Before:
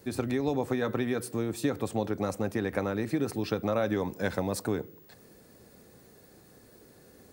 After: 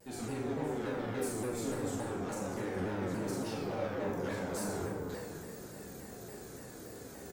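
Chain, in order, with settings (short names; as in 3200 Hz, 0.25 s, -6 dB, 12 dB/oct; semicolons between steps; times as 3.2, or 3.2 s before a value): bell 7200 Hz +7.5 dB 0.37 oct; reverse; compressor 6:1, threshold -36 dBFS, peak gain reduction 13 dB; reverse; soft clip -39.5 dBFS, distortion -9 dB; doubler 41 ms -3 dB; plate-style reverb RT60 2.4 s, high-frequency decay 0.4×, DRR -6 dB; shaped vibrato saw down 3.5 Hz, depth 160 cents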